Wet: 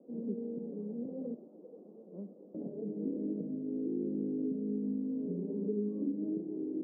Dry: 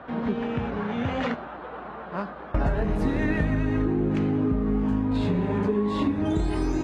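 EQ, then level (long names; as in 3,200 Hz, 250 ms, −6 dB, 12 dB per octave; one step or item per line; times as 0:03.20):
elliptic band-pass filter 190–500 Hz, stop band 70 dB
−9.0 dB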